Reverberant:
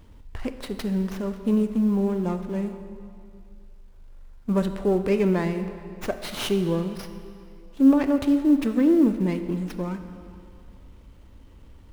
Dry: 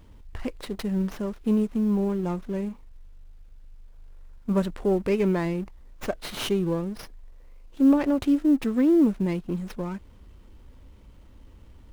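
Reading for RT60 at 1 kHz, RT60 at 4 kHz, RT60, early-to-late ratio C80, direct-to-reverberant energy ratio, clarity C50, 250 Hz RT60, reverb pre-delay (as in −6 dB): 2.5 s, 1.9 s, 2.4 s, 10.0 dB, 8.5 dB, 9.0 dB, 2.4 s, 21 ms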